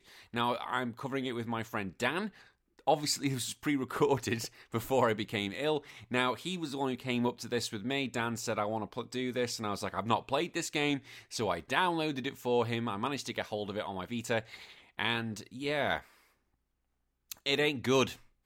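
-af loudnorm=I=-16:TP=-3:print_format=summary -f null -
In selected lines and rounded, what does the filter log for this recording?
Input Integrated:    -33.1 LUFS
Input True Peak:     -12.4 dBTP
Input LRA:             2.6 LU
Input Threshold:     -43.4 LUFS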